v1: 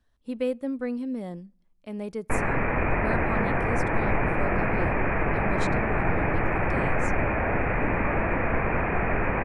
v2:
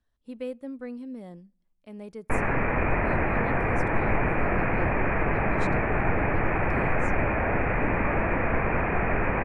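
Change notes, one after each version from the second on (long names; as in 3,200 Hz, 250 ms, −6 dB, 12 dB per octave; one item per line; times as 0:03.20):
speech −7.0 dB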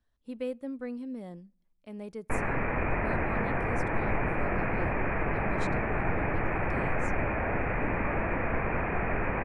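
background −4.5 dB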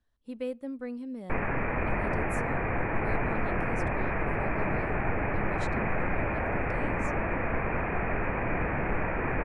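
background: entry −1.00 s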